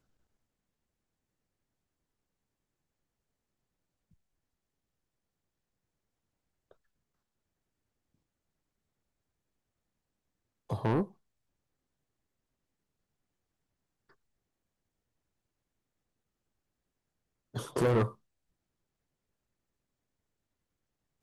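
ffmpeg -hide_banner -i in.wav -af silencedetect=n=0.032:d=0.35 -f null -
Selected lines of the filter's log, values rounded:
silence_start: 0.00
silence_end: 10.71 | silence_duration: 10.71
silence_start: 11.03
silence_end: 17.56 | silence_duration: 6.53
silence_start: 18.06
silence_end: 21.23 | silence_duration: 3.17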